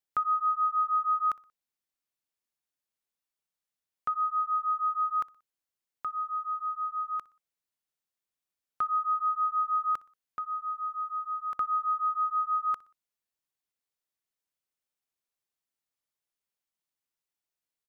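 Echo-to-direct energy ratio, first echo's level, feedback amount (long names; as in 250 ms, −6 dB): −22.0 dB, −23.0 dB, 42%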